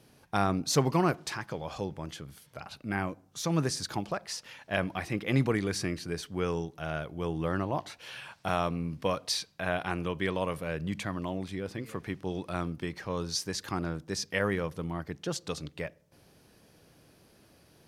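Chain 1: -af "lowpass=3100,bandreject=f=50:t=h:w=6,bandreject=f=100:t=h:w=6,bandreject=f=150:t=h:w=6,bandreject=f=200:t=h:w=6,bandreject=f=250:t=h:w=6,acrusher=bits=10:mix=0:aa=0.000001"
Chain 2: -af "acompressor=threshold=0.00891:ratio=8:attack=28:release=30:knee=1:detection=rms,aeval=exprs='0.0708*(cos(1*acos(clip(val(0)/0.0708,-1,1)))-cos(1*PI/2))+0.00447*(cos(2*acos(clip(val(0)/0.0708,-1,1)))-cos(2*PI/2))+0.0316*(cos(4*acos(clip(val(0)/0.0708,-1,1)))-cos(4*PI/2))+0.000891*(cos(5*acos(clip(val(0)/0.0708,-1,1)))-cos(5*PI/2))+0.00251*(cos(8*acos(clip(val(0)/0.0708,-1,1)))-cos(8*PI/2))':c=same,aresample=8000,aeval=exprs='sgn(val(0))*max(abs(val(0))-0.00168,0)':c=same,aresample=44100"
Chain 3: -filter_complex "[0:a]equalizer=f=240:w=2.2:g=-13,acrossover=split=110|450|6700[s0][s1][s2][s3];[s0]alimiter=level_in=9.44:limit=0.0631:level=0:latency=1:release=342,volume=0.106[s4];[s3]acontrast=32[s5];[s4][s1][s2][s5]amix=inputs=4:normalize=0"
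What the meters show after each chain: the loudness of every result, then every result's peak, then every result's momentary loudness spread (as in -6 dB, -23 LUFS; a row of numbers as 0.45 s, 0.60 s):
-33.5 LUFS, -44.0 LUFS, -34.5 LUFS; -12.5 dBFS, -22.0 dBFS, -13.0 dBFS; 11 LU, 4 LU, 10 LU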